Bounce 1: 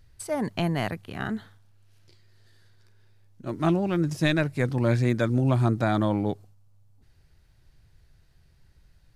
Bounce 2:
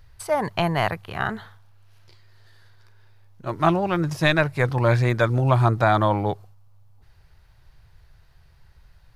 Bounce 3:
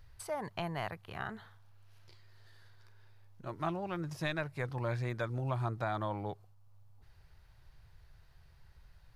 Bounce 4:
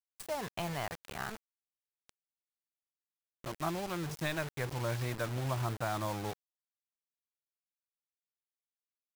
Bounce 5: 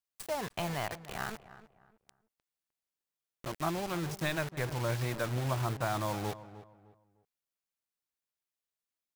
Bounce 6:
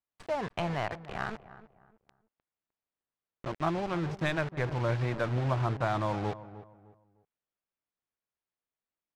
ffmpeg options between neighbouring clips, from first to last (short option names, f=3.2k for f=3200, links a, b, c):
-af "equalizer=f=250:t=o:w=1:g=-11,equalizer=f=1k:t=o:w=1:g=6,equalizer=f=8k:t=o:w=1:g=-6,volume=6dB"
-af "acompressor=threshold=-45dB:ratio=1.5,volume=-6dB"
-af "acrusher=bits=6:mix=0:aa=0.000001"
-filter_complex "[0:a]asplit=2[a][b];[b]adelay=305,lowpass=f=1.7k:p=1,volume=-14.5dB,asplit=2[c][d];[d]adelay=305,lowpass=f=1.7k:p=1,volume=0.31,asplit=2[e][f];[f]adelay=305,lowpass=f=1.7k:p=1,volume=0.31[g];[a][c][e][g]amix=inputs=4:normalize=0,volume=2dB"
-af "adynamicsmooth=sensitivity=3:basefreq=2.4k,volume=3.5dB"